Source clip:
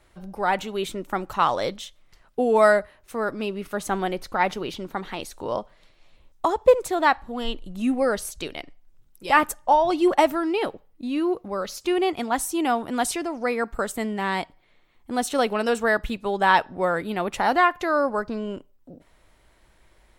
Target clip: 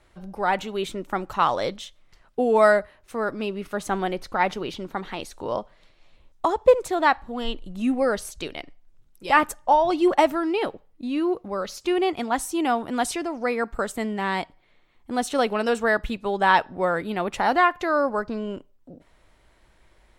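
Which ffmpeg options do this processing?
-af "highshelf=f=11k:g=-9"

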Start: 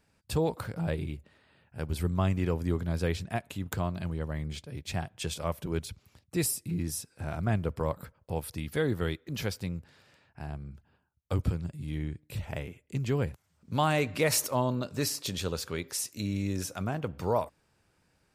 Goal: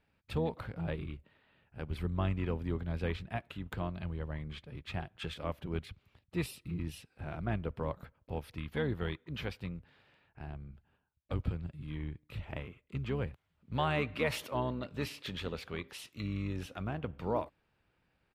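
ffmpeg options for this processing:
-filter_complex "[0:a]asplit=2[a][b];[b]asetrate=22050,aresample=44100,atempo=2,volume=-9dB[c];[a][c]amix=inputs=2:normalize=0,highshelf=f=4.5k:t=q:w=1.5:g=-12,volume=-6dB"

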